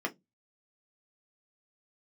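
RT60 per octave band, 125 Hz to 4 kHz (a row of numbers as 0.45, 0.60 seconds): 0.35, 0.30, 0.20, 0.10, 0.10, 0.15 seconds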